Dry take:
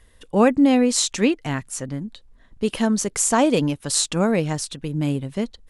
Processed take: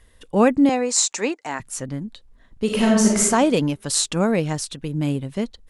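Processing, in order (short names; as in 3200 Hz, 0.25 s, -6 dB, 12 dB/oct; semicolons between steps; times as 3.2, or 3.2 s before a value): 0.69–1.6 speaker cabinet 420–9200 Hz, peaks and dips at 870 Hz +6 dB, 3200 Hz -9 dB, 7200 Hz +6 dB; 2.65–3.2 reverb throw, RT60 0.98 s, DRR -3.5 dB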